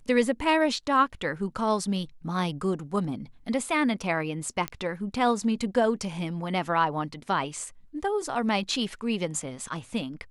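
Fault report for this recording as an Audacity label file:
4.680000	4.680000	pop -14 dBFS

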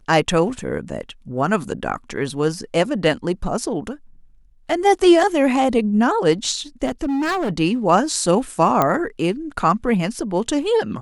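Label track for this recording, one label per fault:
6.850000	7.510000	clipped -18.5 dBFS
8.820000	8.820000	pop -4 dBFS

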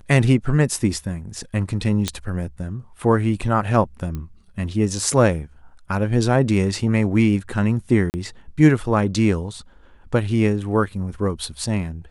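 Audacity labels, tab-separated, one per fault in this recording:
2.080000	2.080000	pop -8 dBFS
4.150000	4.150000	pop -18 dBFS
8.100000	8.140000	dropout 39 ms

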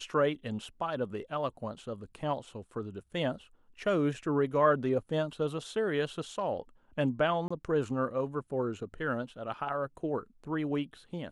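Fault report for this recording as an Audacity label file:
7.480000	7.500000	dropout 25 ms

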